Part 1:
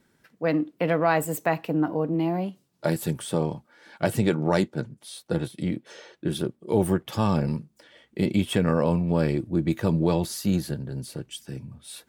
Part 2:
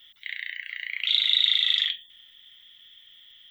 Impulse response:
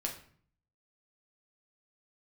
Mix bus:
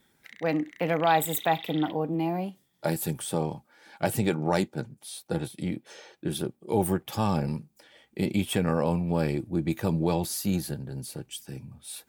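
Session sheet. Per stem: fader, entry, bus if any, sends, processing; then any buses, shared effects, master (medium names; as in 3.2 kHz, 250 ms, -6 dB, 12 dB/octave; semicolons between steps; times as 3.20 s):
-3.5 dB, 0.00 s, no send, peaking EQ 13 kHz +2 dB 2.6 oct; small resonant body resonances 800/2400 Hz, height 9 dB
-1.5 dB, 0.00 s, no send, local Wiener filter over 15 samples; low-pass that closes with the level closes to 2.2 kHz, closed at -21.5 dBFS; auto duck -9 dB, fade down 0.25 s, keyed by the first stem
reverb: none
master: treble shelf 11 kHz +10.5 dB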